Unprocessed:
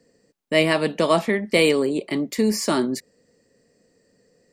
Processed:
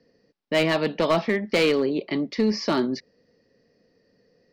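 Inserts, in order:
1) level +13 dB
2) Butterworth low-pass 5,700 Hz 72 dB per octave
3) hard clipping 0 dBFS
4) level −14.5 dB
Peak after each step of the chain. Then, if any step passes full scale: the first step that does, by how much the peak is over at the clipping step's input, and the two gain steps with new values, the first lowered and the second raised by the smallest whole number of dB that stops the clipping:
+8.0, +8.0, 0.0, −14.5 dBFS
step 1, 8.0 dB
step 1 +5 dB, step 4 −6.5 dB

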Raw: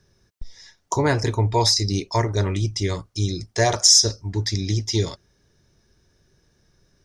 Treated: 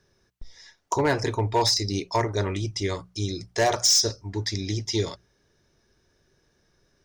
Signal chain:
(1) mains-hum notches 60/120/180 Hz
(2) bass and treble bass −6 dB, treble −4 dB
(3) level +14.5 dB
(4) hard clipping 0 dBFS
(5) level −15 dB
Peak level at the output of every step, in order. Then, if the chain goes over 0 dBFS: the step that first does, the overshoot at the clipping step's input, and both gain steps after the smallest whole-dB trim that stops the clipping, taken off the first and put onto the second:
−2.0, −5.5, +9.0, 0.0, −15.0 dBFS
step 3, 9.0 dB
step 3 +5.5 dB, step 5 −6 dB

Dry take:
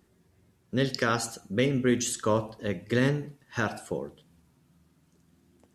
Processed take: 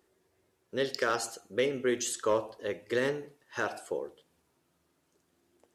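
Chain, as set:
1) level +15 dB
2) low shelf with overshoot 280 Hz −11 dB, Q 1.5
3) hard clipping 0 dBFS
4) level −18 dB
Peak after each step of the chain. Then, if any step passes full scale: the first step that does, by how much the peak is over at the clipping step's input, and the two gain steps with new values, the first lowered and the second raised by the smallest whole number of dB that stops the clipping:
+3.0, +3.5, 0.0, −18.0 dBFS
step 1, 3.5 dB
step 1 +11 dB, step 4 −14 dB

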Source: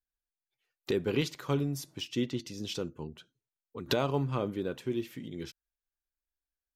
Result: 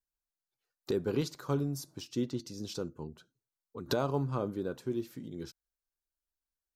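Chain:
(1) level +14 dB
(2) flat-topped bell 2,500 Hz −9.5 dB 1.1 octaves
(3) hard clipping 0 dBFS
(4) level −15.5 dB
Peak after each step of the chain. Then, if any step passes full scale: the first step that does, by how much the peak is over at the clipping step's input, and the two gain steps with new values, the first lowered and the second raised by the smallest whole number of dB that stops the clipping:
−0.5, −1.5, −1.5, −17.0 dBFS
no step passes full scale

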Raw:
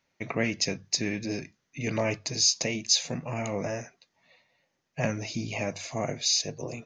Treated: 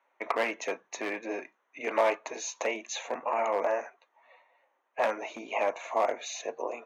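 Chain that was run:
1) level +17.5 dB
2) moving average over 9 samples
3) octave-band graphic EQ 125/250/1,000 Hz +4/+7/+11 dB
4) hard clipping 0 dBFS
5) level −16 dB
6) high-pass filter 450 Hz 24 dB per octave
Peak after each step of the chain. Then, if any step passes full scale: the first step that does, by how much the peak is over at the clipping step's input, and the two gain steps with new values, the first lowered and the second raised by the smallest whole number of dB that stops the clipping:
+7.5, +3.5, +8.5, 0.0, −16.0, −12.5 dBFS
step 1, 8.5 dB
step 1 +8.5 dB, step 5 −7 dB

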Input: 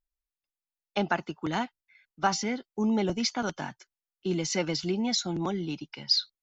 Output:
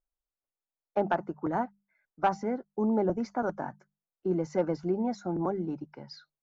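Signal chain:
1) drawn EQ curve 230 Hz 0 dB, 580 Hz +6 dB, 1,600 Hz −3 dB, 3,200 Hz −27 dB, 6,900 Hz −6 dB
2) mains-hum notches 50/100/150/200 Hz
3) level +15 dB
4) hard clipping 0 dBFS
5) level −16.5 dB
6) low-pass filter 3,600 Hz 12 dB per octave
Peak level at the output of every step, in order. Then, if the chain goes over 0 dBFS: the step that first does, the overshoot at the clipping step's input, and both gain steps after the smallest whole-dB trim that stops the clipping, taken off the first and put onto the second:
−10.5, −10.5, +4.5, 0.0, −16.5, −16.0 dBFS
step 3, 4.5 dB
step 3 +10 dB, step 5 −11.5 dB

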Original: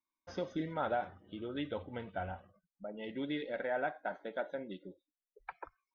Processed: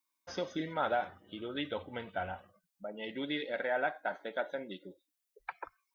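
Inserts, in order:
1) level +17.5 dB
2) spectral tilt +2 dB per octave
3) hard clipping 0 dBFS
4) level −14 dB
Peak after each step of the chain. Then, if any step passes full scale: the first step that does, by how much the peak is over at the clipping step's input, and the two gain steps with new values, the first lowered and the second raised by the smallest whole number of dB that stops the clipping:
−6.0, −5.5, −5.5, −19.5 dBFS
no step passes full scale

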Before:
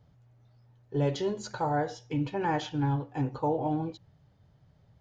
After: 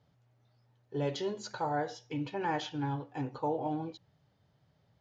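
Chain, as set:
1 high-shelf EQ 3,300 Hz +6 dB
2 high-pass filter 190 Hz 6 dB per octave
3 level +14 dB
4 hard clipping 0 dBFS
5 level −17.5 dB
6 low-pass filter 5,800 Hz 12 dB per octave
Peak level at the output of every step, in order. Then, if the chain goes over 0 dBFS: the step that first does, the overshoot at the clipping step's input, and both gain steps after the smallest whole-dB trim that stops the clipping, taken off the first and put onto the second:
−16.5, −18.0, −4.0, −4.0, −21.5, −21.5 dBFS
no step passes full scale

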